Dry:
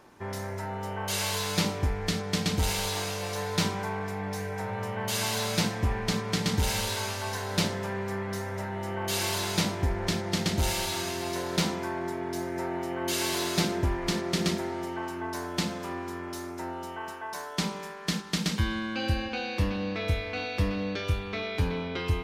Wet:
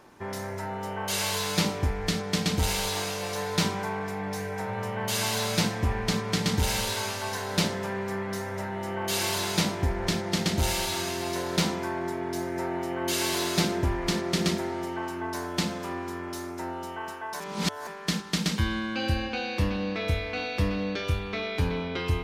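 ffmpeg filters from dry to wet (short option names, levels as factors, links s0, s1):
-filter_complex "[0:a]asplit=3[s0][s1][s2];[s0]atrim=end=17.402[s3];[s1]atrim=start=17.398:end=17.872,asetpts=PTS-STARTPTS,areverse[s4];[s2]atrim=start=17.868[s5];[s3][s4]acrossfade=d=0.004:c1=hsin:c2=hsin[s6];[s6][s5]acrossfade=d=0.004:c1=hsin:c2=hsin,bandreject=f=50:t=h:w=6,bandreject=f=100:t=h:w=6,volume=1.19"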